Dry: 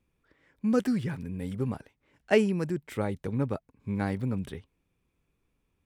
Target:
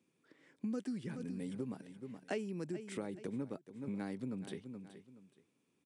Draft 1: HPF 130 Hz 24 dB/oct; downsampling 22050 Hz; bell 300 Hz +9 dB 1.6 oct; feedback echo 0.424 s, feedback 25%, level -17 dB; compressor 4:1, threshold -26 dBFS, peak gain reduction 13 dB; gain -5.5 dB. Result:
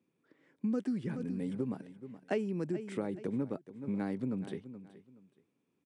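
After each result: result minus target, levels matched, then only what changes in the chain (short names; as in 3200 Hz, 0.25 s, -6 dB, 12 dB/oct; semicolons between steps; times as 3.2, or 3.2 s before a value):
4000 Hz band -7.0 dB; compressor: peak gain reduction -6.5 dB
add after HPF: high shelf 2800 Hz +10.5 dB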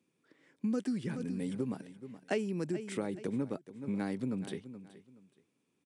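compressor: peak gain reduction -6 dB
change: compressor 4:1, threshold -34 dBFS, peak gain reduction 19.5 dB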